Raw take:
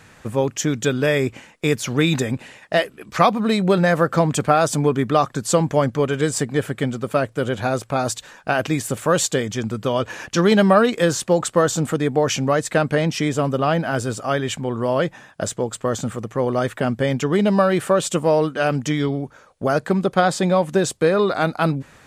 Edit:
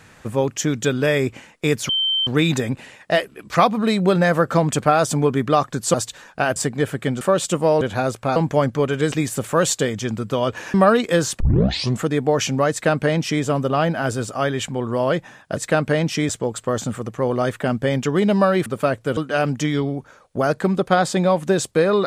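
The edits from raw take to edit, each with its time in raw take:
0:01.89: insert tone 3,110 Hz −17 dBFS 0.38 s
0:05.56–0:06.32: swap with 0:08.03–0:08.65
0:06.97–0:07.48: swap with 0:17.83–0:18.43
0:10.27–0:10.63: remove
0:11.29: tape start 0.63 s
0:12.60–0:13.32: duplicate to 0:15.46

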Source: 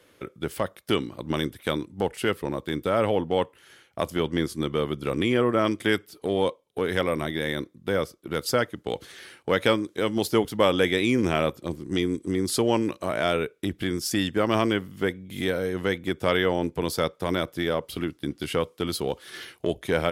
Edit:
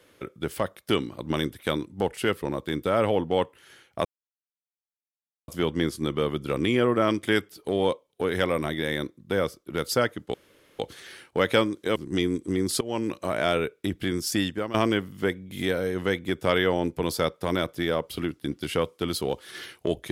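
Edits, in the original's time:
0:04.05: splice in silence 1.43 s
0:08.91: splice in room tone 0.45 s
0:10.08–0:11.75: remove
0:12.60–0:13.08: fade in equal-power, from −21.5 dB
0:14.18–0:14.53: fade out, to −14 dB

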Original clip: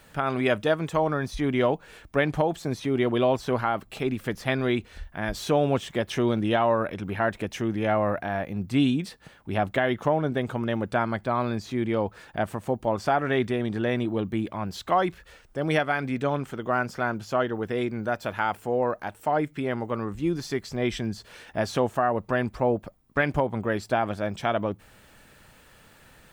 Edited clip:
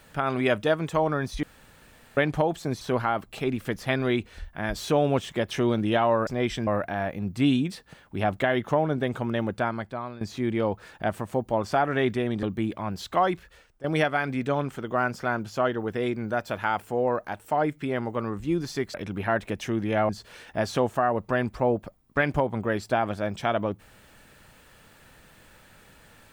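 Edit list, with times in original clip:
0:01.43–0:02.17: fill with room tone
0:02.81–0:03.40: remove
0:06.86–0:08.01: swap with 0:20.69–0:21.09
0:10.80–0:11.55: fade out, to −16 dB
0:13.77–0:14.18: remove
0:14.88–0:15.59: fade out equal-power, to −15 dB

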